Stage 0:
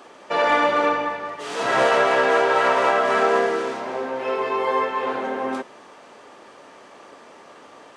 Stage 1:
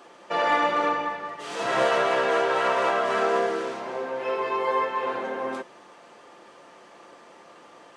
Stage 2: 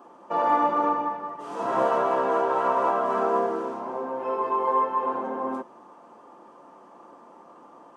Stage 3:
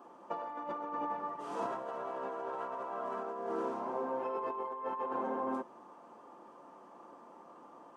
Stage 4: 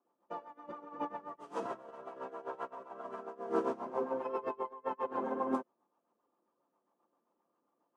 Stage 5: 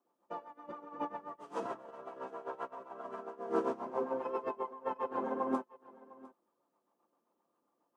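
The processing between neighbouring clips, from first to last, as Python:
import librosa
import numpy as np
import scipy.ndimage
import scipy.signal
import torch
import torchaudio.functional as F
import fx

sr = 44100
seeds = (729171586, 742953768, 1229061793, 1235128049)

y1 = x + 0.35 * np.pad(x, (int(5.8 * sr / 1000.0), 0))[:len(x)]
y1 = y1 * librosa.db_to_amplitude(-4.5)
y2 = fx.graphic_eq_10(y1, sr, hz=(250, 1000, 2000, 4000, 8000), db=(10, 11, -9, -9, -4))
y2 = y2 * librosa.db_to_amplitude(-5.5)
y3 = fx.over_compress(y2, sr, threshold_db=-29.0, ratio=-1.0)
y3 = y3 * librosa.db_to_amplitude(-9.0)
y4 = fx.rotary(y3, sr, hz=7.5)
y4 = fx.upward_expand(y4, sr, threshold_db=-55.0, expansion=2.5)
y4 = y4 * librosa.db_to_amplitude(8.0)
y5 = y4 + 10.0 ** (-20.5 / 20.0) * np.pad(y4, (int(704 * sr / 1000.0), 0))[:len(y4)]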